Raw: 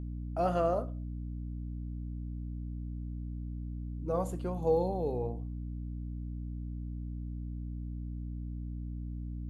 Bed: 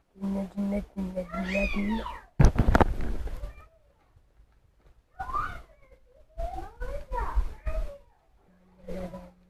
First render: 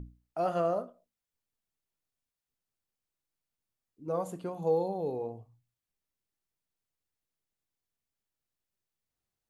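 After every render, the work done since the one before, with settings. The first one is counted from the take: hum notches 60/120/180/240/300 Hz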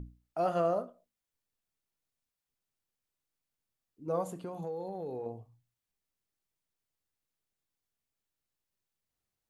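4.24–5.26 s: compression, threshold -35 dBFS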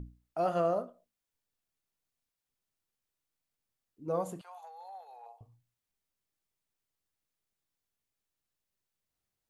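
4.41–5.41 s: elliptic high-pass 740 Hz, stop band 80 dB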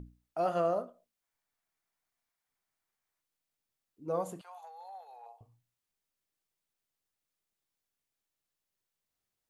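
1.22–3.21 s: time-frequency box 620–2400 Hz +6 dB; bass shelf 190 Hz -5 dB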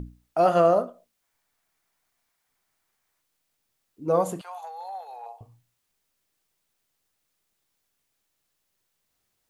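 trim +11 dB

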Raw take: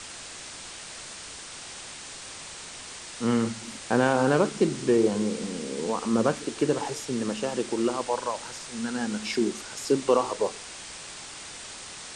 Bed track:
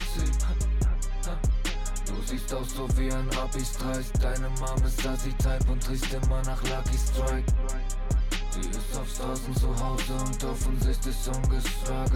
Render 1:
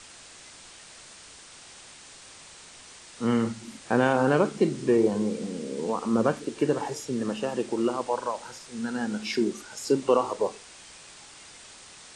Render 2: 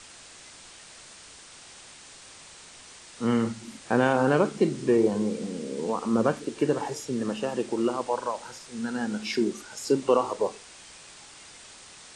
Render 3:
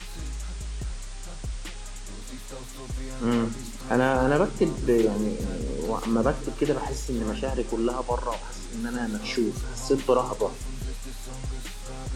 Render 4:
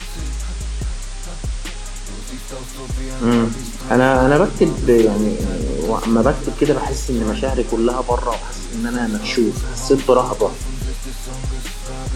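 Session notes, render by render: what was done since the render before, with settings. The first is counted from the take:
noise print and reduce 7 dB
no audible change
add bed track -8.5 dB
trim +9 dB; peak limiter -2 dBFS, peak gain reduction 1.5 dB

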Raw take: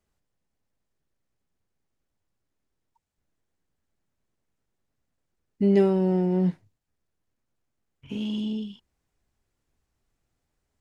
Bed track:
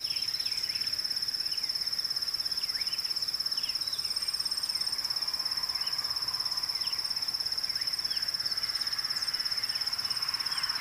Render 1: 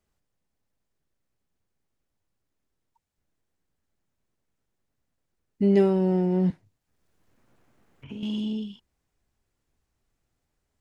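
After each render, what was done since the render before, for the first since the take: 6.50–8.23 s: three bands compressed up and down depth 70%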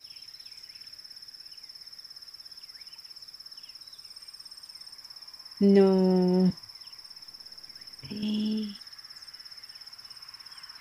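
add bed track -14.5 dB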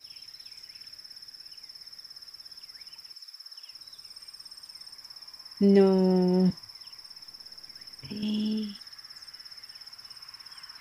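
3.13–3.71 s: high-pass 1.5 kHz -> 420 Hz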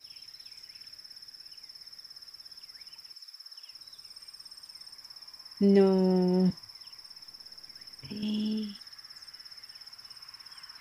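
trim -2 dB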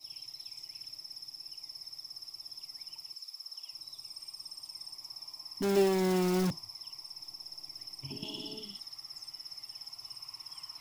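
static phaser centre 320 Hz, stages 8; in parallel at -6 dB: integer overflow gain 29.5 dB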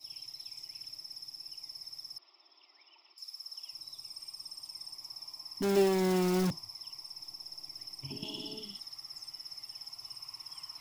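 2.18–3.18 s: elliptic band-pass 350–3600 Hz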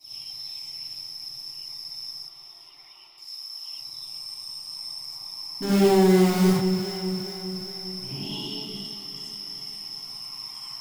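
echo whose repeats swap between lows and highs 204 ms, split 1.2 kHz, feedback 75%, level -8 dB; gated-style reverb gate 120 ms rising, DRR -7 dB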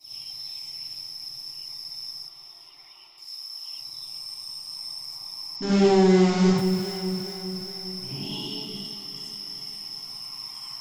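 5.56–6.58 s: steep low-pass 7.4 kHz 72 dB/octave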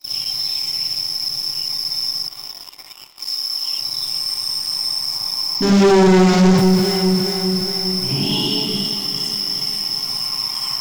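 waveshaping leveller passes 3; in parallel at +1 dB: compression, threshold -30 dBFS, peak gain reduction 17 dB

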